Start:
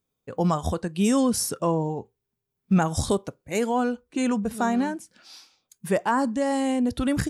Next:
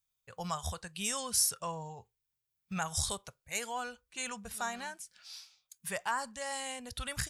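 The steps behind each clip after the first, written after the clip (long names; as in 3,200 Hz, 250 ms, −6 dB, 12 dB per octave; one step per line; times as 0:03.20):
guitar amp tone stack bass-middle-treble 10-0-10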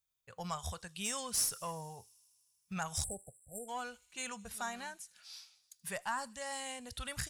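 one-sided soft clipper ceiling −22 dBFS
delay with a high-pass on its return 78 ms, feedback 80%, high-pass 3,900 Hz, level −21.5 dB
time-frequency box erased 0:03.04–0:03.69, 800–7,400 Hz
level −2.5 dB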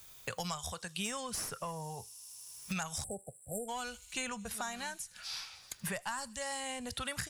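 multiband upward and downward compressor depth 100%
level +1.5 dB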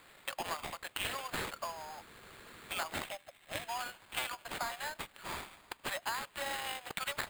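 mu-law and A-law mismatch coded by A
Butterworth high-pass 550 Hz 96 dB per octave
sample-rate reduction 5,800 Hz, jitter 0%
level +4 dB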